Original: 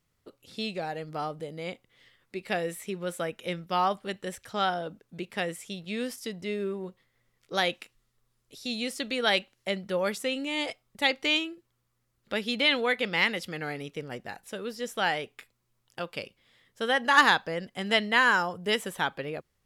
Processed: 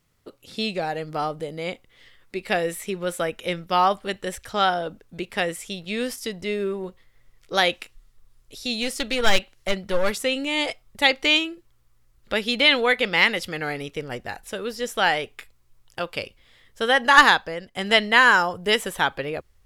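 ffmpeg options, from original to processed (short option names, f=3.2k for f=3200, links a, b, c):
-filter_complex "[0:a]asettb=1/sr,asplit=3[a][b][c];[a]atrim=end=8.804[d];[b]atrim=start=8.8:end=10.19,asetpts=PTS-STARTPTS,afade=t=in:d=0.004:c=qsin,afade=t=out:st=1.386:d=0.004:c=qsin,aeval=exprs='clip(val(0),-1,0.0376)':c=same[e];[c]atrim=start=10.186[f];[d][e]acrossfade=d=0.004:c1=hsin:c2=qsin[g];[g][f]acrossfade=d=0.004:c1=qsin:c2=hsin,asplit=2[h][i];[h]atrim=end=17.75,asetpts=PTS-STARTPTS,afade=t=out:st=17.16:d=0.59:silence=0.334965[j];[i]atrim=start=17.75,asetpts=PTS-STARTPTS,afade=t=in:d=0.004:c=hsin:silence=0.334965[k];[j][k]concat=n=2:v=0:a=1,asubboost=boost=6.5:cutoff=61,volume=7dB"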